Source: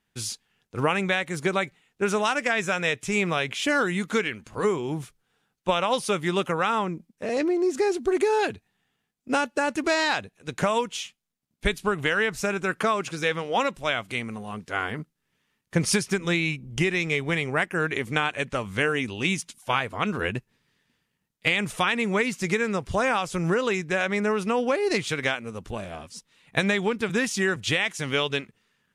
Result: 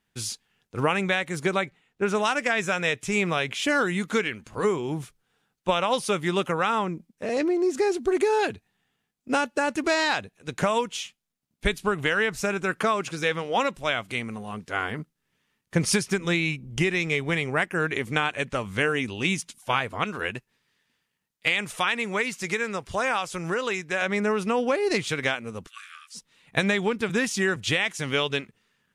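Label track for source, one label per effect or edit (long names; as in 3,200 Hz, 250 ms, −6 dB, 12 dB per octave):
1.610000	2.150000	high-shelf EQ 4,600 Hz −9 dB
20.040000	24.020000	low-shelf EQ 420 Hz −8.5 dB
25.670000	26.150000	linear-phase brick-wall high-pass 1,100 Hz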